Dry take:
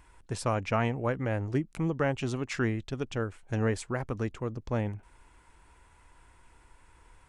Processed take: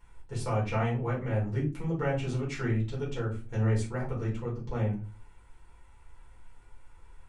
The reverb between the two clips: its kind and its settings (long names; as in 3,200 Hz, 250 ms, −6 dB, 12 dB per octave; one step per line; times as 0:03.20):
rectangular room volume 170 cubic metres, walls furnished, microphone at 4.4 metres
level −11.5 dB